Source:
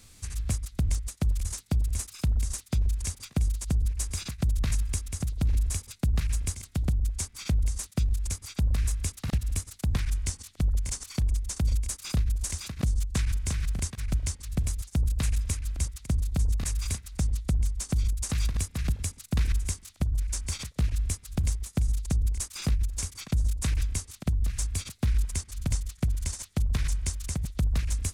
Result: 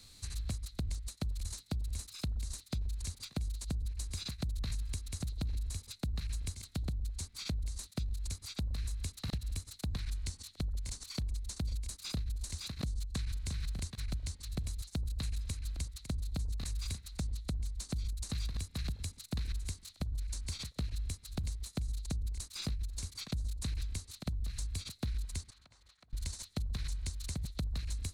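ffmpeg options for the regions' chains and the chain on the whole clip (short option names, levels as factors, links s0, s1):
-filter_complex "[0:a]asettb=1/sr,asplit=3[s0][s1][s2];[s0]atrim=end=25.504[s3];[s1]atrim=start=25.5:end=26.13,asetpts=PTS-STARTPTS,afade=t=in:d=0.004:c=qsin,afade=t=out:st=0.626:d=0.004:c=qsin,bandpass=f=1100:t=q:w=0.84,acompressor=threshold=0.002:ratio=12:attack=3.2:release=140:knee=1:detection=peak[s4];[s2]atrim=start=26.126[s5];[s3][s4]acrossfade=d=0.004:c1=hsin:c2=qsin[s6];[s6][s5]acrossfade=d=0.004:c1=qsin:c2=hsin,acrossover=split=350[s7][s8];[s8]acompressor=threshold=0.0158:ratio=6[s9];[s7][s9]amix=inputs=2:normalize=0,equalizer=f=4100:w=5.1:g=14.5,acompressor=threshold=0.0398:ratio=4,volume=0.531"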